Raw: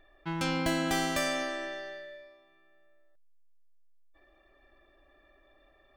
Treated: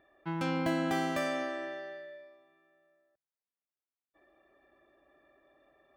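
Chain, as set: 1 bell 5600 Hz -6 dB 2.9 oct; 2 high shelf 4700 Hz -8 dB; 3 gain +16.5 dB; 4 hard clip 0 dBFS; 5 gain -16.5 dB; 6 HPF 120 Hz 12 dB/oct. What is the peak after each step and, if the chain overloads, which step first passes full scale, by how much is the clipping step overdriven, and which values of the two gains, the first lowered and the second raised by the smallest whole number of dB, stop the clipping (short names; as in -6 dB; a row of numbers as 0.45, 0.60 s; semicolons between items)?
-18.0, -18.5, -2.0, -2.0, -18.5, -19.5 dBFS; no overload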